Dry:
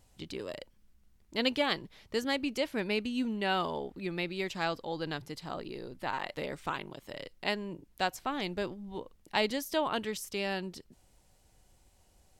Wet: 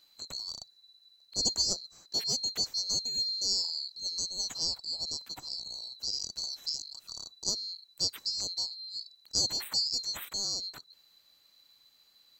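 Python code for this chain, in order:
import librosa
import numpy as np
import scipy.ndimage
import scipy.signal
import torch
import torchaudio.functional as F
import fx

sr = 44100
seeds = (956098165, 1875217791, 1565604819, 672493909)

y = fx.band_swap(x, sr, width_hz=4000)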